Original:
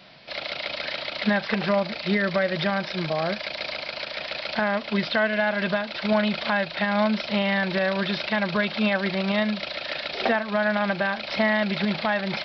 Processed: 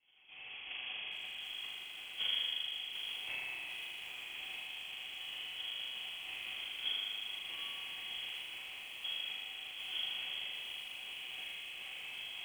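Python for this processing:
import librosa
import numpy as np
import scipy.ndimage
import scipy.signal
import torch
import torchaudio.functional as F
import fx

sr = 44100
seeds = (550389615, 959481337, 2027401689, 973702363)

y = scipy.signal.sosfilt(scipy.signal.butter(2, 100.0, 'highpass', fs=sr, output='sos'), x)
y = fx.peak_eq(y, sr, hz=1000.0, db=8.5, octaves=0.49)
y = fx.over_compress(y, sr, threshold_db=-23.0, ratio=-0.5)
y = fx.vowel_filter(y, sr, vowel='e')
y = fx.stiff_resonator(y, sr, f0_hz=220.0, decay_s=0.68, stiffness=0.008)
y = fx.filter_lfo_highpass(y, sr, shape='saw_up', hz=5.5, low_hz=410.0, high_hz=2400.0, q=1.7)
y = fx.sample_hold(y, sr, seeds[0], rate_hz=1800.0, jitter_pct=20)
y = fx.air_absorb(y, sr, metres=190.0)
y = fx.echo_banded(y, sr, ms=120, feedback_pct=75, hz=490.0, wet_db=-10.5)
y = fx.rev_spring(y, sr, rt60_s=2.3, pass_ms=(39,), chirp_ms=65, drr_db=-5.5)
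y = fx.freq_invert(y, sr, carrier_hz=3300)
y = fx.echo_crushed(y, sr, ms=748, feedback_pct=55, bits=9, wet_db=-8.5)
y = y * 10.0 ** (4.0 / 20.0)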